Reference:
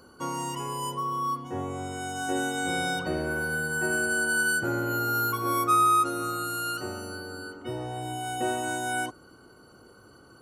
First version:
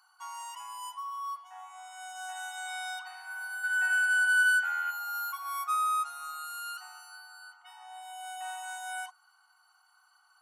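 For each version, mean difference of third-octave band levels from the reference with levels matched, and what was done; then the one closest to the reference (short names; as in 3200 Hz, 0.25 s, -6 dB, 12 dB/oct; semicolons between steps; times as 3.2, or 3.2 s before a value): 13.5 dB: spectral gain 3.64–4.91, 1300–3900 Hz +10 dB; brick-wall FIR high-pass 710 Hz; gain -7.5 dB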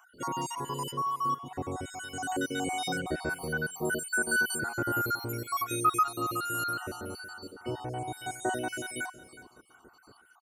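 6.0 dB: random spectral dropouts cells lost 52%; on a send: feedback echo 0.367 s, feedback 23%, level -16.5 dB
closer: second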